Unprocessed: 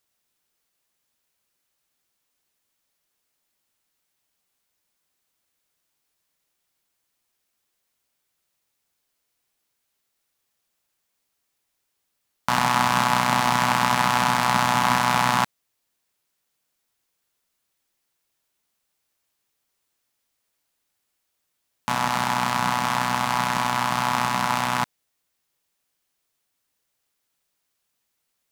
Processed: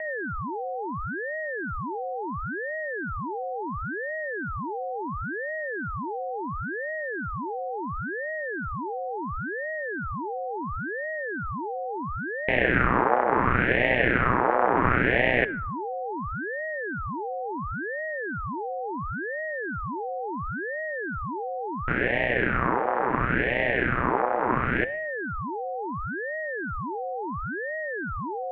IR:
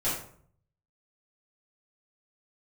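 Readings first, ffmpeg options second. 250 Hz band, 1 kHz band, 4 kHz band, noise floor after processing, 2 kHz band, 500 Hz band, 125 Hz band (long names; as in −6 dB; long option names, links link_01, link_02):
+3.0 dB, −3.5 dB, −12.5 dB, −32 dBFS, +3.5 dB, +10.5 dB, +2.0 dB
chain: -filter_complex "[0:a]aeval=exprs='val(0)+0.0398*sin(2*PI*890*n/s)':channel_layout=same,asplit=2[link_01][link_02];[1:a]atrim=start_sample=2205,asetrate=30870,aresample=44100[link_03];[link_02][link_03]afir=irnorm=-1:irlink=0,volume=-25.5dB[link_04];[link_01][link_04]amix=inputs=2:normalize=0,highpass=frequency=510:width_type=q:width=0.5412,highpass=frequency=510:width_type=q:width=1.307,lowpass=frequency=2000:width_type=q:width=0.5176,lowpass=frequency=2000:width_type=q:width=0.7071,lowpass=frequency=2000:width_type=q:width=1.932,afreqshift=-260,aeval=exprs='val(0)*sin(2*PI*680*n/s+680*0.85/0.72*sin(2*PI*0.72*n/s))':channel_layout=same,volume=1.5dB"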